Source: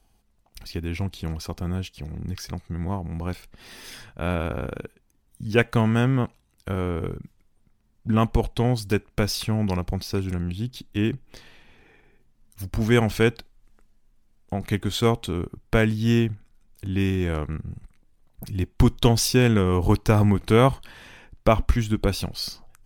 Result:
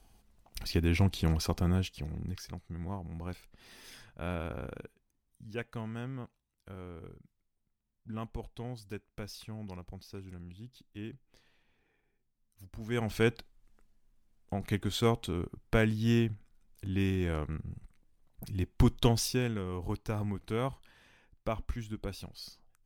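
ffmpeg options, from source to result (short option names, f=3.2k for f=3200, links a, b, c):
-af "volume=13.5dB,afade=t=out:st=1.39:d=1.08:silence=0.251189,afade=t=out:st=4.8:d=0.77:silence=0.375837,afade=t=in:st=12.85:d=0.42:silence=0.251189,afade=t=out:st=19.01:d=0.53:silence=0.354813"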